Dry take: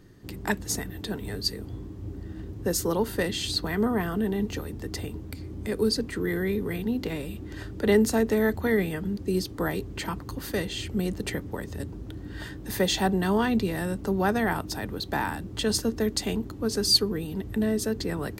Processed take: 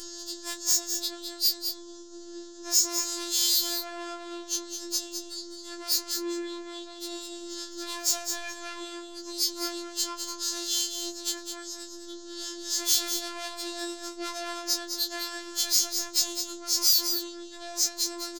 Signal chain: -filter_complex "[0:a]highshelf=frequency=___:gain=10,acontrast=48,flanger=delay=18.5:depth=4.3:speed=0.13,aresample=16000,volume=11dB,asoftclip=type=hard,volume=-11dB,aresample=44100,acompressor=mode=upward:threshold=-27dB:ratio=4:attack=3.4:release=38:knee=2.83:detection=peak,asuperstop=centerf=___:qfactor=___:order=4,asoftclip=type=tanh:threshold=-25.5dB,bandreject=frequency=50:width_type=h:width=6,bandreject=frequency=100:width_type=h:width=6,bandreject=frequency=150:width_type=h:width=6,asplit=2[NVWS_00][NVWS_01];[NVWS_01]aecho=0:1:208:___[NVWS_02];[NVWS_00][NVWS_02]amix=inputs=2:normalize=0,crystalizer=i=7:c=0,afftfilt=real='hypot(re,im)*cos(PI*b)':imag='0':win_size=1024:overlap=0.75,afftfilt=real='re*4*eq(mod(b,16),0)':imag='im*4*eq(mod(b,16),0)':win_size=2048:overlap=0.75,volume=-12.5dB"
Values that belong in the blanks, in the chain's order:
2900, 2300, 1.3, 0.422